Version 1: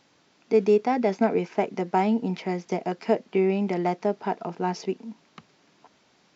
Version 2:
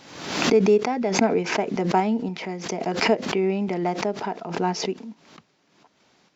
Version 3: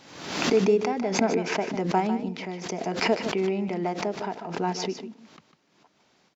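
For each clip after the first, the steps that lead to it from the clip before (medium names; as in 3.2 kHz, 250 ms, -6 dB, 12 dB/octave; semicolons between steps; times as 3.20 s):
random-step tremolo; swell ahead of each attack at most 66 dB/s; trim +2.5 dB
delay 150 ms -10.5 dB; trim -3.5 dB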